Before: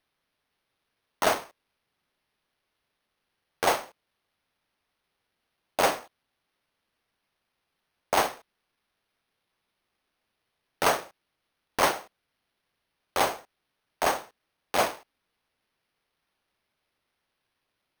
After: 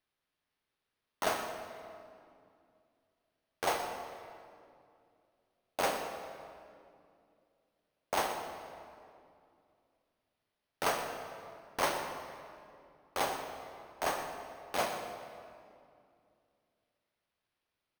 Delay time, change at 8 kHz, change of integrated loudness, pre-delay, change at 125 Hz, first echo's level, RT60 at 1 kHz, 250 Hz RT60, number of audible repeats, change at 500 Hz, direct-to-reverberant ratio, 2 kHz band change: 122 ms, −7.5 dB, −9.0 dB, 18 ms, −6.0 dB, −12.5 dB, 2.3 s, 3.0 s, 1, −7.0 dB, 4.0 dB, −7.0 dB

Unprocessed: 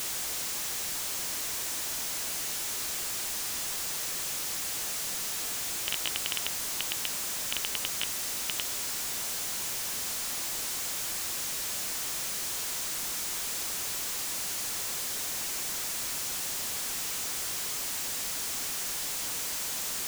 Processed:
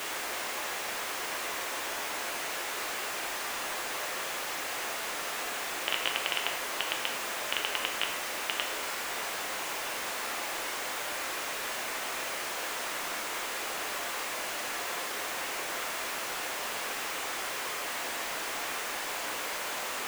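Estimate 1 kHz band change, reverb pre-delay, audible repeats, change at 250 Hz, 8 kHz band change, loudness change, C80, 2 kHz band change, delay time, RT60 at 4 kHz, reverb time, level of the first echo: +8.5 dB, 5 ms, no echo audible, +2.0 dB, −6.5 dB, −2.5 dB, 9.5 dB, +6.5 dB, no echo audible, 0.60 s, 1.0 s, no echo audible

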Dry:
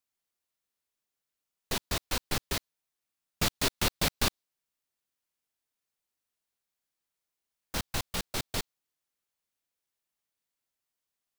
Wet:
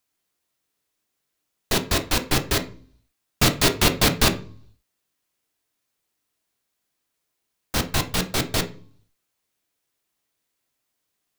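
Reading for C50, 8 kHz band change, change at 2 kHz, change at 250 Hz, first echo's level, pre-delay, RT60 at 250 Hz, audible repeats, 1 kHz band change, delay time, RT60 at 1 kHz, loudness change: 13.5 dB, +9.0 dB, +10.0 dB, +12.5 dB, no echo audible, 3 ms, 0.70 s, no echo audible, +10.0 dB, no echo audible, 0.45 s, +10.0 dB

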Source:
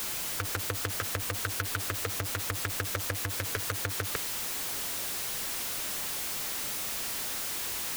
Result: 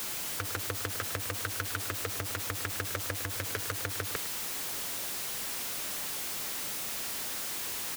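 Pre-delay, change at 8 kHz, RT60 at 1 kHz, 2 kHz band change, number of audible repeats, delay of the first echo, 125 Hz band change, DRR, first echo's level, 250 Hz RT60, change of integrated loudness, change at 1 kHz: no reverb audible, −2.0 dB, no reverb audible, −1.5 dB, 1, 106 ms, −3.0 dB, no reverb audible, −12.5 dB, no reverb audible, −2.0 dB, −1.5 dB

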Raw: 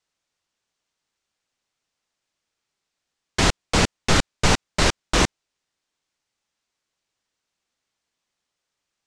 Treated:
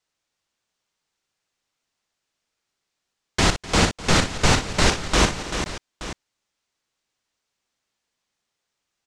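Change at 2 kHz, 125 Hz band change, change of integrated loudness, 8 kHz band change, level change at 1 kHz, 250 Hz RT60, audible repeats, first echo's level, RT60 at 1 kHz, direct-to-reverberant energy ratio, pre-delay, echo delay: +1.0 dB, +1.5 dB, +0.5 dB, +1.5 dB, +1.5 dB, no reverb audible, 5, −10.0 dB, no reverb audible, no reverb audible, no reverb audible, 59 ms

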